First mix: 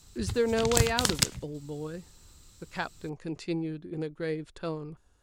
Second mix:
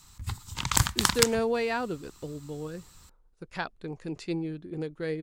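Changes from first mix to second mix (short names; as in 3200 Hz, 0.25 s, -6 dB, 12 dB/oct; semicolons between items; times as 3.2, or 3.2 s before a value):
speech: entry +0.80 s; background: add ten-band EQ 500 Hz -10 dB, 1000 Hz +11 dB, 2000 Hz +3 dB, 16000 Hz +5 dB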